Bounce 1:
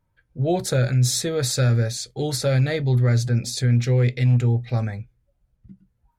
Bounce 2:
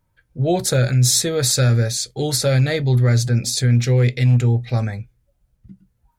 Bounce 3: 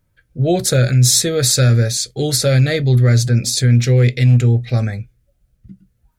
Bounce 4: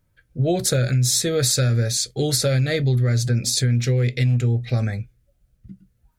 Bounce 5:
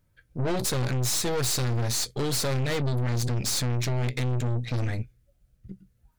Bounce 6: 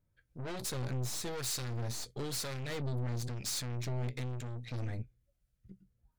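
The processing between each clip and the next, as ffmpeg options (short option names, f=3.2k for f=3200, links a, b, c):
-af "highshelf=f=4.1k:g=6,volume=3dB"
-af "equalizer=f=920:w=3.4:g=-11,volume=3.5dB"
-af "acompressor=threshold=-14dB:ratio=6,volume=-2dB"
-af "aeval=exprs='(tanh(25.1*val(0)+0.75)-tanh(0.75))/25.1':c=same,volume=3dB"
-filter_complex "[0:a]acrossover=split=1100[a][b];[a]aeval=exprs='val(0)*(1-0.5/2+0.5/2*cos(2*PI*1*n/s))':c=same[c];[b]aeval=exprs='val(0)*(1-0.5/2-0.5/2*cos(2*PI*1*n/s))':c=same[d];[c][d]amix=inputs=2:normalize=0,volume=-8.5dB"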